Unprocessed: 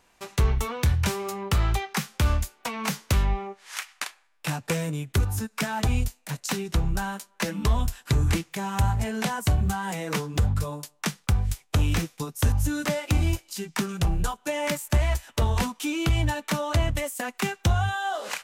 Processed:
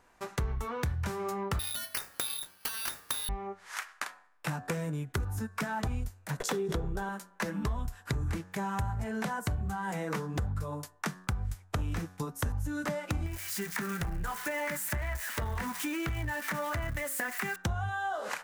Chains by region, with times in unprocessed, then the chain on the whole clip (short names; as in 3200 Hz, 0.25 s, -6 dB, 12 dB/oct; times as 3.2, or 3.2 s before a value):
1.59–3.29 inverted band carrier 3800 Hz + careless resampling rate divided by 6×, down filtered, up zero stuff
6.4–7.09 small resonant body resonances 440/3400 Hz, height 15 dB, ringing for 25 ms + backwards sustainer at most 83 dB/s
13.26–17.56 switching spikes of -24.5 dBFS + bell 1900 Hz +10 dB 0.91 oct + compressor 3:1, threshold -26 dBFS
whole clip: resonant high shelf 2100 Hz -6 dB, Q 1.5; de-hum 92.16 Hz, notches 20; compressor 4:1, threshold -31 dBFS